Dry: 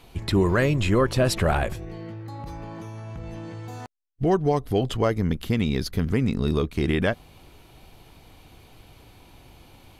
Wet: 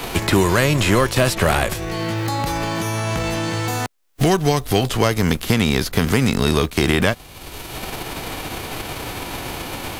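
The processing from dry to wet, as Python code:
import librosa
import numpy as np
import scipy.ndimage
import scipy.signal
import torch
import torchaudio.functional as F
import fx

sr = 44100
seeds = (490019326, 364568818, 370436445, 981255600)

y = fx.envelope_flatten(x, sr, power=0.6)
y = fx.band_squash(y, sr, depth_pct=70)
y = y * librosa.db_to_amplitude(5.5)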